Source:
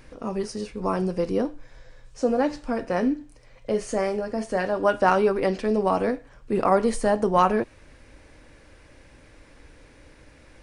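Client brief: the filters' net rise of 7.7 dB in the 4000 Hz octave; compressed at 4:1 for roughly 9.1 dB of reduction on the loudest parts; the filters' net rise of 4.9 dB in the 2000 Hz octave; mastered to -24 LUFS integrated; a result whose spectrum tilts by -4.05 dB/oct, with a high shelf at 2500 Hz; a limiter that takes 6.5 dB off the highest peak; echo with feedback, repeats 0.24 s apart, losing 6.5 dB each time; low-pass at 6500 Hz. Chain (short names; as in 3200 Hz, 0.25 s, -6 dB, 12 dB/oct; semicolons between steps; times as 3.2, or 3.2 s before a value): LPF 6500 Hz; bell 2000 Hz +3.5 dB; high shelf 2500 Hz +5 dB; bell 4000 Hz +5.5 dB; compressor 4:1, threshold -24 dBFS; limiter -20 dBFS; feedback echo 0.24 s, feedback 47%, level -6.5 dB; gain +6.5 dB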